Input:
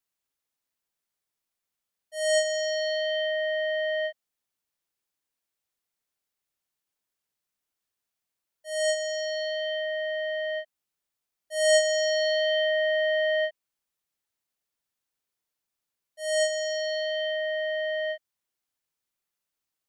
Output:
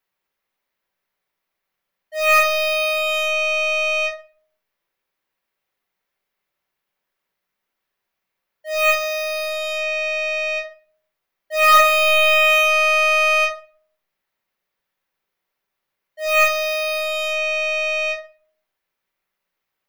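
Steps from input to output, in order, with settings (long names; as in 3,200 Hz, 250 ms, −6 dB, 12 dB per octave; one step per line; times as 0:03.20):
phase distortion by the signal itself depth 0.75 ms
octave-band graphic EQ 500/1,000/2,000/8,000 Hz +5/+4/+6/−10 dB
rectangular room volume 400 cubic metres, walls furnished, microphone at 1.1 metres
level +4.5 dB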